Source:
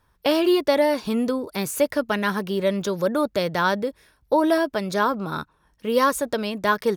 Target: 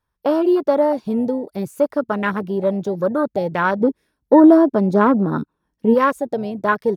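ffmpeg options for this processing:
-filter_complex "[0:a]asplit=3[a][b][c];[a]afade=t=out:st=3.8:d=0.02[d];[b]equalizer=f=260:t=o:w=1.5:g=11.5,afade=t=in:st=3.8:d=0.02,afade=t=out:st=5.93:d=0.02[e];[c]afade=t=in:st=5.93:d=0.02[f];[d][e][f]amix=inputs=3:normalize=0,afwtdn=0.0631,volume=3dB"

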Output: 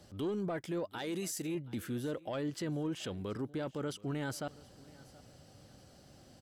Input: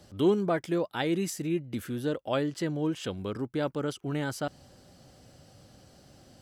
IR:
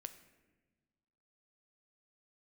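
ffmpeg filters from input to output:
-filter_complex "[0:a]asoftclip=type=tanh:threshold=-18.5dB,asettb=1/sr,asplit=3[a][b][c];[a]atrim=end=0.984[d];[b]atrim=start=0.98:end=1.55,asetpts=PTS-STARTPTS,afade=t=in:d=0.004:c=qsin,afade=t=out:st=0.566:d=0.004:c=qsin,bass=f=250:g=-6,treble=f=4k:g=8[e];[c]atrim=start=1.546[f];[d][e]acrossfade=d=0.004:c1=hsin:c2=qsin[g];[g][f]acrossfade=d=0.004:c1=qsin:c2=hsin,alimiter=level_in=3dB:limit=-24dB:level=0:latency=1:release=13,volume=-3dB,asplit=2[h][i];[i]aecho=0:1:727|1454:0.0794|0.023[j];[h][j]amix=inputs=2:normalize=0,volume=-3dB"

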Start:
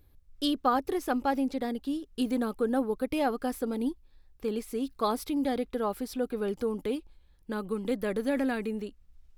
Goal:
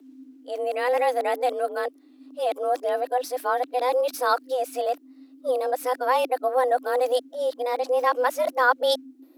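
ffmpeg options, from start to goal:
-af "areverse,afreqshift=250,volume=6dB"

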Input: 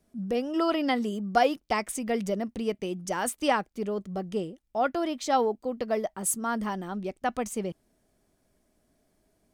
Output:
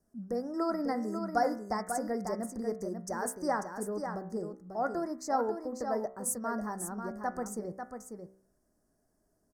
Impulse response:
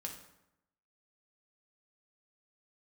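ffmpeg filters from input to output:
-filter_complex "[0:a]asuperstop=centerf=3000:order=8:qfactor=1,bandreject=f=63.85:t=h:w=4,bandreject=f=127.7:t=h:w=4,bandreject=f=191.55:t=h:w=4,bandreject=f=255.4:t=h:w=4,bandreject=f=319.25:t=h:w=4,bandreject=f=383.1:t=h:w=4,bandreject=f=446.95:t=h:w=4,bandreject=f=510.8:t=h:w=4,bandreject=f=574.65:t=h:w=4,bandreject=f=638.5:t=h:w=4,bandreject=f=702.35:t=h:w=4,bandreject=f=766.2:t=h:w=4,bandreject=f=830.05:t=h:w=4,bandreject=f=893.9:t=h:w=4,bandreject=f=957.75:t=h:w=4,bandreject=f=1.0216k:t=h:w=4,bandreject=f=1.08545k:t=h:w=4,bandreject=f=1.1493k:t=h:w=4,bandreject=f=1.21315k:t=h:w=4,bandreject=f=1.277k:t=h:w=4,bandreject=f=1.34085k:t=h:w=4,bandreject=f=1.4047k:t=h:w=4,bandreject=f=1.46855k:t=h:w=4,bandreject=f=1.5324k:t=h:w=4,bandreject=f=1.59625k:t=h:w=4,bandreject=f=1.6601k:t=h:w=4,bandreject=f=1.72395k:t=h:w=4,bandreject=f=1.7878k:t=h:w=4,bandreject=f=1.85165k:t=h:w=4,bandreject=f=1.9155k:t=h:w=4,bandreject=f=1.97935k:t=h:w=4,bandreject=f=2.0432k:t=h:w=4,bandreject=f=2.10705k:t=h:w=4,bandreject=f=2.1709k:t=h:w=4,bandreject=f=2.23475k:t=h:w=4,bandreject=f=2.2986k:t=h:w=4,bandreject=f=2.36245k:t=h:w=4,asplit=2[a][b];[b]aecho=0:1:543:0.447[c];[a][c]amix=inputs=2:normalize=0,volume=-5.5dB"

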